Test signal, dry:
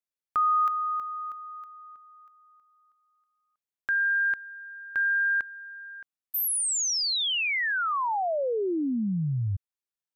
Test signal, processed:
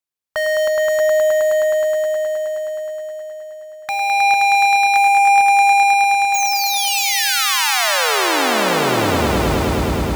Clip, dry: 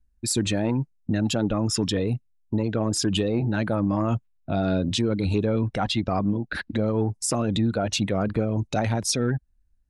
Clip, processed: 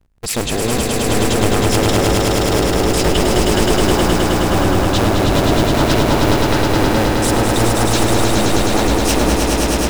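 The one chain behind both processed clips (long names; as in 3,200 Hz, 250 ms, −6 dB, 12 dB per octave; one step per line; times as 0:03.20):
sub-harmonics by changed cycles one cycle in 2, inverted
echo that builds up and dies away 105 ms, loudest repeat 5, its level −4 dB
level +4 dB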